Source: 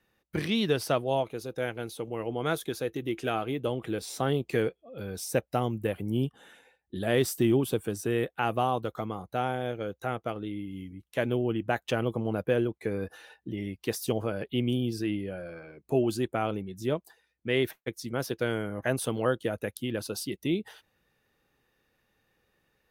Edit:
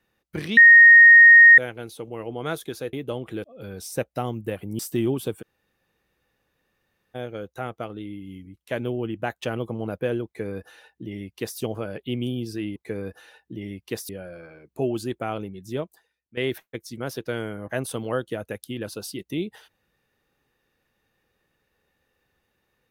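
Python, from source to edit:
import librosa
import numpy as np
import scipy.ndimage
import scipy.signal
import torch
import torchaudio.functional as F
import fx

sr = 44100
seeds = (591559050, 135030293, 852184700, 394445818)

y = fx.edit(x, sr, fx.bleep(start_s=0.57, length_s=1.01, hz=1860.0, db=-6.5),
    fx.cut(start_s=2.93, length_s=0.56),
    fx.cut(start_s=4.0, length_s=0.81),
    fx.cut(start_s=6.16, length_s=1.09),
    fx.room_tone_fill(start_s=7.88, length_s=1.73, crossfade_s=0.02),
    fx.duplicate(start_s=12.72, length_s=1.33, to_s=15.22),
    fx.fade_out_to(start_s=16.88, length_s=0.62, floor_db=-14.0), tone=tone)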